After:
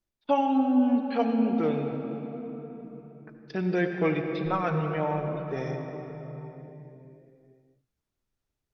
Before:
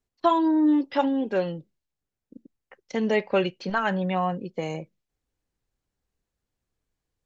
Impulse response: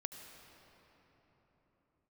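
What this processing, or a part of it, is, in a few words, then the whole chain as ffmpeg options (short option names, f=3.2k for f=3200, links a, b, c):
slowed and reverbed: -filter_complex "[0:a]asetrate=36603,aresample=44100[a];[1:a]atrim=start_sample=2205[b];[a][b]afir=irnorm=-1:irlink=0"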